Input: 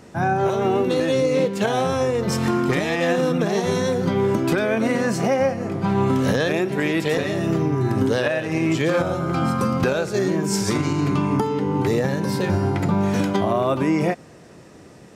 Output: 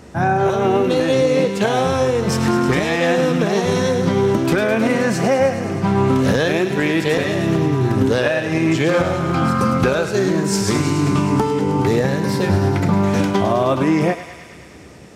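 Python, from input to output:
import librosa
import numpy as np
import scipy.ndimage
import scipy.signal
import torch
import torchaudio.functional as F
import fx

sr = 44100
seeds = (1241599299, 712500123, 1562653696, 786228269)

y = fx.peak_eq(x, sr, hz=68.0, db=14.0, octaves=0.31)
y = fx.echo_thinned(y, sr, ms=105, feedback_pct=82, hz=840.0, wet_db=-10)
y = fx.doppler_dist(y, sr, depth_ms=0.12)
y = y * librosa.db_to_amplitude(3.5)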